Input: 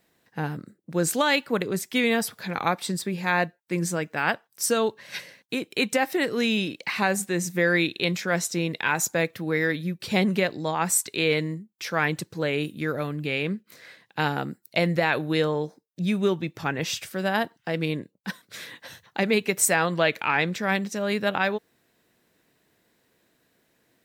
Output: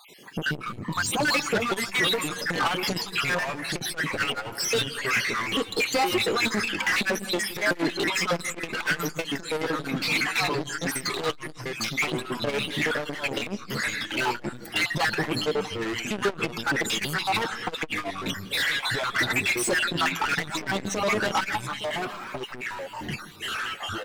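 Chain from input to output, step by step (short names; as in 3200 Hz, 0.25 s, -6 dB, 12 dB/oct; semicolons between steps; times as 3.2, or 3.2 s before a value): random spectral dropouts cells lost 66%; de-esser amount 95%; bell 660 Hz -12 dB 0.28 oct; in parallel at +0.5 dB: compressor, threshold -40 dBFS, peak gain reduction 19.5 dB; on the sum: flange 0.13 Hz, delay 4.9 ms, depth 2.8 ms, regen -22%; overdrive pedal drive 31 dB, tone 5400 Hz, clips at -14 dBFS; echo 0.863 s -20 dB; echoes that change speed 80 ms, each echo -4 st, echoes 2, each echo -6 dB; on a send at -18.5 dB: reverb RT60 0.35 s, pre-delay 0.153 s; on the sum: core saturation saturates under 290 Hz; gain -1.5 dB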